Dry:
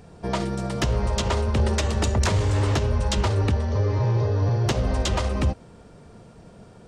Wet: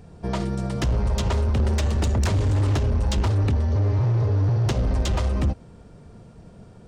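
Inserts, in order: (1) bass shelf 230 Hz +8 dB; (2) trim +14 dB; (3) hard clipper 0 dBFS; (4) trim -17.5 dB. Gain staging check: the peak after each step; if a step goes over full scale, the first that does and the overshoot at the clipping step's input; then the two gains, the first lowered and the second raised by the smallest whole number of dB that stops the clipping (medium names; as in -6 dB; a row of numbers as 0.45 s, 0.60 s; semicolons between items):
-6.5 dBFS, +7.5 dBFS, 0.0 dBFS, -17.5 dBFS; step 2, 7.5 dB; step 2 +6 dB, step 4 -9.5 dB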